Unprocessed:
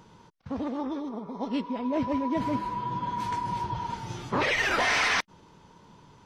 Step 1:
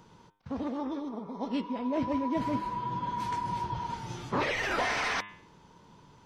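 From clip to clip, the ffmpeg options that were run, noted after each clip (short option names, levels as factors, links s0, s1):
-filter_complex "[0:a]bandreject=f=102:t=h:w=4,bandreject=f=204:t=h:w=4,bandreject=f=306:t=h:w=4,bandreject=f=408:t=h:w=4,bandreject=f=510:t=h:w=4,bandreject=f=612:t=h:w=4,bandreject=f=714:t=h:w=4,bandreject=f=816:t=h:w=4,bandreject=f=918:t=h:w=4,bandreject=f=1020:t=h:w=4,bandreject=f=1122:t=h:w=4,bandreject=f=1224:t=h:w=4,bandreject=f=1326:t=h:w=4,bandreject=f=1428:t=h:w=4,bandreject=f=1530:t=h:w=4,bandreject=f=1632:t=h:w=4,bandreject=f=1734:t=h:w=4,bandreject=f=1836:t=h:w=4,bandreject=f=1938:t=h:w=4,bandreject=f=2040:t=h:w=4,bandreject=f=2142:t=h:w=4,bandreject=f=2244:t=h:w=4,bandreject=f=2346:t=h:w=4,bandreject=f=2448:t=h:w=4,bandreject=f=2550:t=h:w=4,bandreject=f=2652:t=h:w=4,bandreject=f=2754:t=h:w=4,bandreject=f=2856:t=h:w=4,bandreject=f=2958:t=h:w=4,bandreject=f=3060:t=h:w=4,bandreject=f=3162:t=h:w=4,bandreject=f=3264:t=h:w=4,bandreject=f=3366:t=h:w=4,bandreject=f=3468:t=h:w=4,bandreject=f=3570:t=h:w=4,bandreject=f=3672:t=h:w=4,acrossover=split=1200[s0][s1];[s1]alimiter=limit=0.0631:level=0:latency=1:release=74[s2];[s0][s2]amix=inputs=2:normalize=0,volume=0.794"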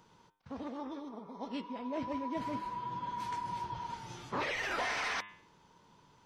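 -af "lowshelf=f=460:g=-6,volume=0.631"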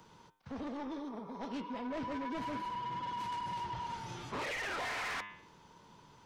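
-filter_complex "[0:a]acrossover=split=110|450|3800[s0][s1][s2][s3];[s3]acompressor=threshold=0.00112:ratio=6[s4];[s0][s1][s2][s4]amix=inputs=4:normalize=0,asoftclip=type=tanh:threshold=0.0106,volume=1.58"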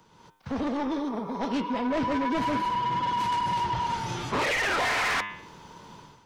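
-af "dynaudnorm=f=110:g=5:m=3.98"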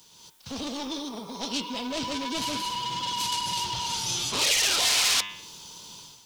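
-af "aexciter=amount=10.1:drive=4:freq=2800,acrusher=bits=8:mix=0:aa=0.000001,volume=0.501"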